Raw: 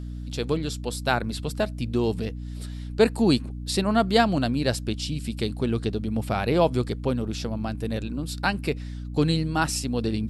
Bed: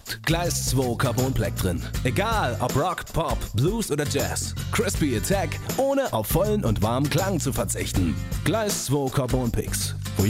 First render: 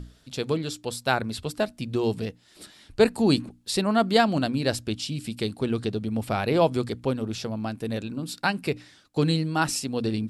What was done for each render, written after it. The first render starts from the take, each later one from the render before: notches 60/120/180/240/300 Hz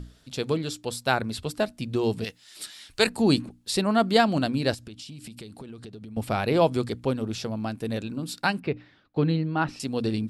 2.24–3.07 tilt shelf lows -9 dB; 4.74–6.17 compressor 16:1, threshold -37 dBFS; 8.6–9.8 air absorption 340 m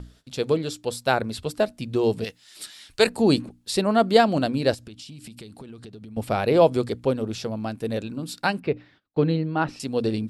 gate -54 dBFS, range -17 dB; dynamic EQ 510 Hz, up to +6 dB, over -36 dBFS, Q 1.4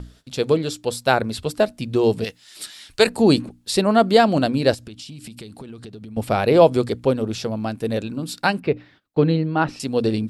gain +4 dB; limiter -3 dBFS, peak gain reduction 2.5 dB

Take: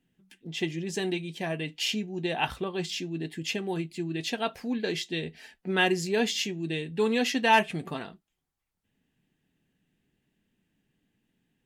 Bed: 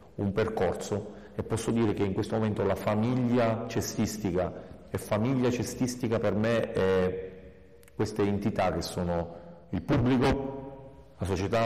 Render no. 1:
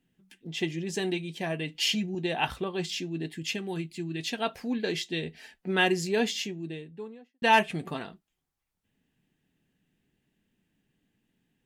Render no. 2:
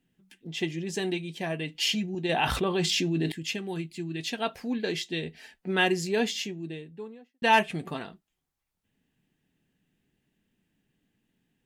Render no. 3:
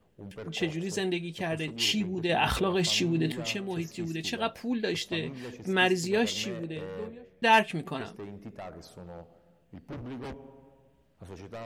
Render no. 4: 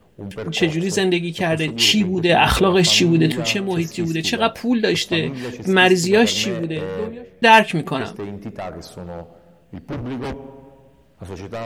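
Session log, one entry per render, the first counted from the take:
1.74–2.15 comb 6 ms, depth 87%; 3.32–4.39 bell 620 Hz -5 dB 2 oct; 6.08–7.42 studio fade out
2.29–3.32 fast leveller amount 70%
add bed -15 dB
gain +12 dB; limiter -3 dBFS, peak gain reduction 2.5 dB

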